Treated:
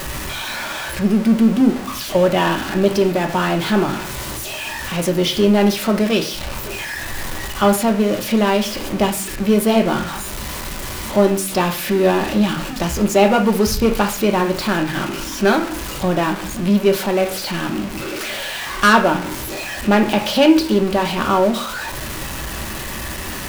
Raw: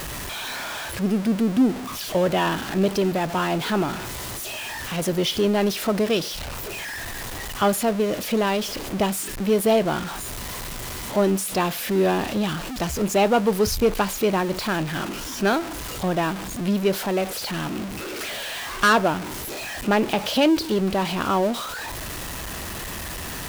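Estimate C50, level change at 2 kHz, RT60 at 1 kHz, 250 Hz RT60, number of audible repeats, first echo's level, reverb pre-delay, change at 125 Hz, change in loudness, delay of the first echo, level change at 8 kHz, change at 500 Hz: 10.0 dB, +5.5 dB, 0.45 s, 0.60 s, no echo audible, no echo audible, 3 ms, +5.0 dB, +5.5 dB, no echo audible, +3.5 dB, +5.0 dB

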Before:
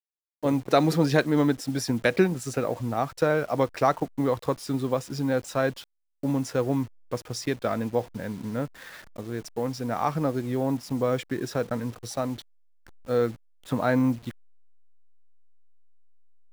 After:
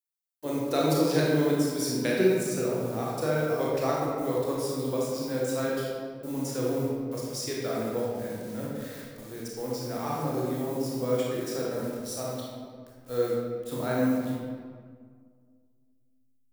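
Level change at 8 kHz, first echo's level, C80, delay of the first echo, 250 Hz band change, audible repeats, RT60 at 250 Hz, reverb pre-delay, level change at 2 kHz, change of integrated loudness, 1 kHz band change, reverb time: +2.5 dB, no echo audible, 1.0 dB, no echo audible, −2.5 dB, no echo audible, 2.3 s, 26 ms, −4.5 dB, −2.0 dB, −5.0 dB, 1.9 s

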